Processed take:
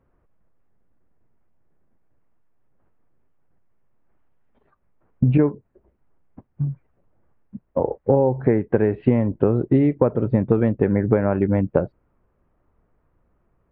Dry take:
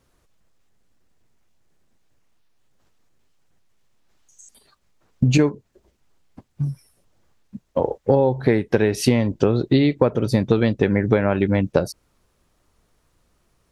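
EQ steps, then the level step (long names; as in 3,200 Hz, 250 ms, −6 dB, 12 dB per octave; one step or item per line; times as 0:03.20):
Gaussian smoothing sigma 4.9 samples
0.0 dB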